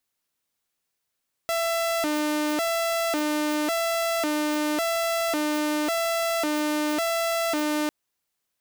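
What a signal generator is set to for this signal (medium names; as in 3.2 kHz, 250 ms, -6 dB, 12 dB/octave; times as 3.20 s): siren hi-lo 301–668 Hz 0.91 per s saw -20.5 dBFS 6.40 s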